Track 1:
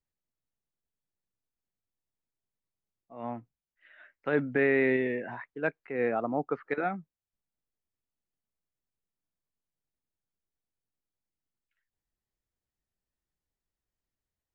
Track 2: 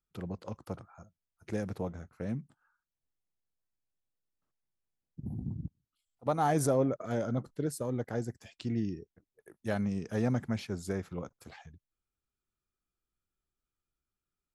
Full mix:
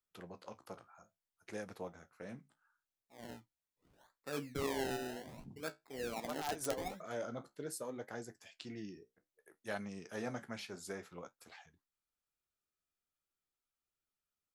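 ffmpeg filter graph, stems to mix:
ffmpeg -i stem1.wav -i stem2.wav -filter_complex "[0:a]acrusher=samples=27:mix=1:aa=0.000001:lfo=1:lforange=27:lforate=0.65,volume=-9dB,asplit=2[link_01][link_02];[1:a]highpass=frequency=820:poles=1,aeval=exprs='(mod(12.6*val(0)+1,2)-1)/12.6':channel_layout=same,volume=2dB[link_03];[link_02]apad=whole_len=641280[link_04];[link_03][link_04]sidechaincompress=threshold=-48dB:ratio=4:attack=11:release=131[link_05];[link_01][link_05]amix=inputs=2:normalize=0,flanger=delay=9.2:depth=8.2:regen=-55:speed=0.61:shape=triangular" out.wav

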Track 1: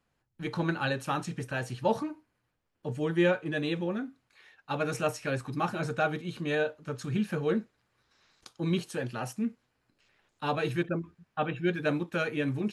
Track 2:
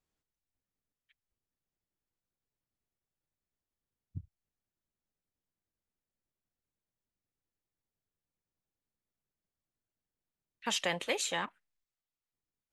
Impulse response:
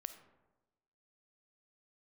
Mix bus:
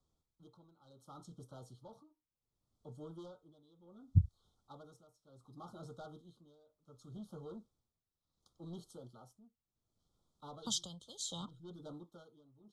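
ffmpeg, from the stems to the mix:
-filter_complex "[0:a]asoftclip=type=tanh:threshold=-25.5dB,volume=-15.5dB[link_01];[1:a]lowpass=8000,equalizer=frequency=61:width=0.31:gain=8,dynaudnorm=framelen=810:gausssize=7:maxgain=9.5dB,volume=2.5dB[link_02];[link_01][link_02]amix=inputs=2:normalize=0,acrossover=split=180|3000[link_03][link_04][link_05];[link_04]acompressor=threshold=-43dB:ratio=6[link_06];[link_03][link_06][link_05]amix=inputs=3:normalize=0,tremolo=f=0.68:d=0.89,asuperstop=centerf=2100:order=20:qfactor=1.2"

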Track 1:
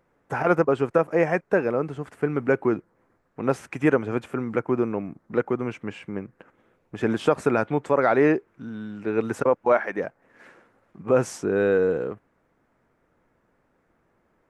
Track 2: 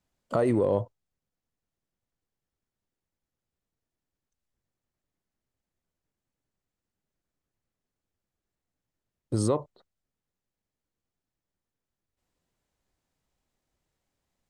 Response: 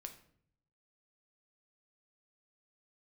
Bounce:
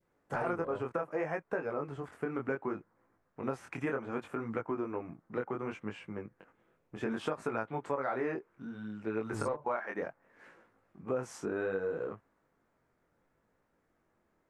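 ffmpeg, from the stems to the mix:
-filter_complex "[0:a]flanger=delay=18:depth=6.4:speed=0.66,volume=-5.5dB[link_01];[1:a]asoftclip=type=tanh:threshold=-18.5dB,volume=-10dB[link_02];[link_01][link_02]amix=inputs=2:normalize=0,adynamicequalizer=threshold=0.00708:dfrequency=1100:dqfactor=0.97:tfrequency=1100:tqfactor=0.97:attack=5:release=100:ratio=0.375:range=3:mode=boostabove:tftype=bell,acompressor=threshold=-31dB:ratio=5"

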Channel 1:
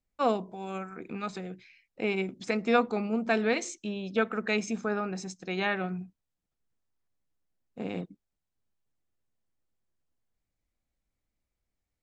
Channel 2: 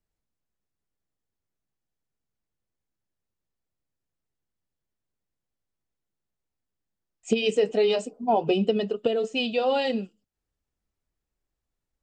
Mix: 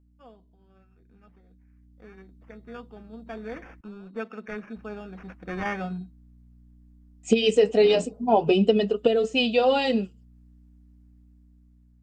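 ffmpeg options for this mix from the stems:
ffmpeg -i stem1.wav -i stem2.wav -filter_complex "[0:a]acrusher=samples=11:mix=1:aa=0.000001,lowpass=2200,volume=-3.5dB,afade=type=in:start_time=3.08:duration=0.64:silence=0.375837,afade=type=in:start_time=5.12:duration=0.38:silence=0.334965[link_01];[1:a]aeval=exprs='val(0)+0.00178*(sin(2*PI*60*n/s)+sin(2*PI*2*60*n/s)/2+sin(2*PI*3*60*n/s)/3+sin(2*PI*4*60*n/s)/4+sin(2*PI*5*60*n/s)/5)':channel_layout=same,volume=-0.5dB,asplit=3[link_02][link_03][link_04];[link_02]atrim=end=3.81,asetpts=PTS-STARTPTS,afade=type=out:start_time=3.806:duration=0.004:curve=hsin[link_05];[link_03]atrim=start=3.81:end=4.76,asetpts=PTS-STARTPTS,volume=0[link_06];[link_04]atrim=start=4.76,asetpts=PTS-STARTPTS,afade=type=in:duration=0.004:curve=hsin[link_07];[link_05][link_06][link_07]concat=n=3:v=0:a=1[link_08];[link_01][link_08]amix=inputs=2:normalize=0,dynaudnorm=framelen=800:gausssize=5:maxgain=9.5dB,flanger=delay=3.8:depth=1.1:regen=-50:speed=0.54:shape=triangular" out.wav

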